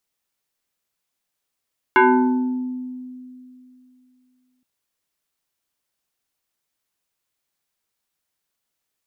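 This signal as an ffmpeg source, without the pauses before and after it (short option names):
-f lavfi -i "aevalsrc='0.355*pow(10,-3*t/2.79)*sin(2*PI*253*t+2.8*pow(10,-3*t/1.33)*sin(2*PI*2.48*253*t))':d=2.67:s=44100"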